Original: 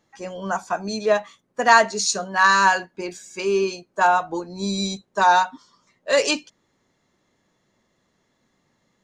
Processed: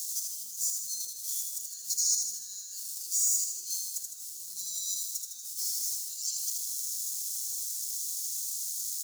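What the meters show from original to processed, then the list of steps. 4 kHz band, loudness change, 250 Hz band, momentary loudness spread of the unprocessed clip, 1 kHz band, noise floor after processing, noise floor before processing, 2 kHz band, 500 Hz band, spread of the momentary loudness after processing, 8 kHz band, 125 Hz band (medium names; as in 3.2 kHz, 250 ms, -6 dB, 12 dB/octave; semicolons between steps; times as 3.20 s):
-8.5 dB, -10.5 dB, under -40 dB, 17 LU, under -40 dB, -43 dBFS, -70 dBFS, under -40 dB, under -40 dB, 10 LU, +4.0 dB, under -40 dB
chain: jump at every zero crossing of -27.5 dBFS; in parallel at -0.5 dB: compressor with a negative ratio -26 dBFS; on the sum: peak limiter -12.5 dBFS, peak gain reduction 9.5 dB; inverse Chebyshev high-pass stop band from 2.4 kHz, stop band 50 dB; on a send: feedback delay 79 ms, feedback 58%, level -4.5 dB; on the sum: trim -3 dB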